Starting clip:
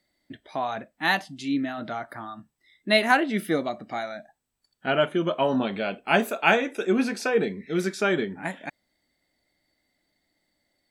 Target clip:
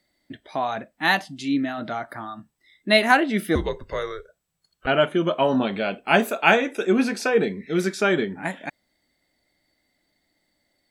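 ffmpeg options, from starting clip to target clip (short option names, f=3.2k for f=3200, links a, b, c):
-filter_complex "[0:a]asettb=1/sr,asplit=3[a][b][c];[a]atrim=end=3.554[d];[b]atrim=start=3.55:end=4.87,asetpts=PTS-STARTPTS,afade=t=in:d=0.004:c=qsin,afade=t=out:st=1.316:d=0.004:c=qsin,afreqshift=-200[e];[c]atrim=start=4.866[f];[d][e]acrossfade=d=0.004:c1=hsin:c2=qsin[g];[g][f]acrossfade=d=0.004:c1=qsin:c2=hsin,volume=3dB"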